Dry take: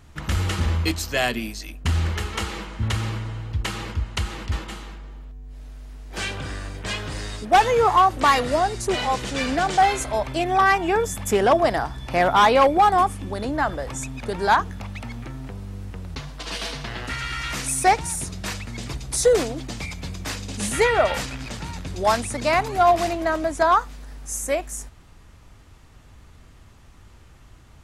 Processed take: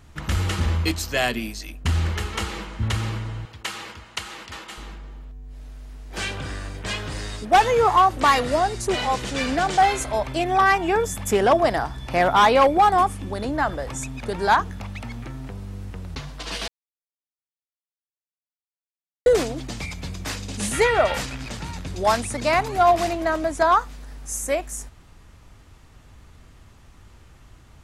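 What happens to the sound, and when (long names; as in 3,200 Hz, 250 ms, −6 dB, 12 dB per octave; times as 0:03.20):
0:03.45–0:04.78: high-pass filter 730 Hz 6 dB per octave
0:16.68–0:19.26: silence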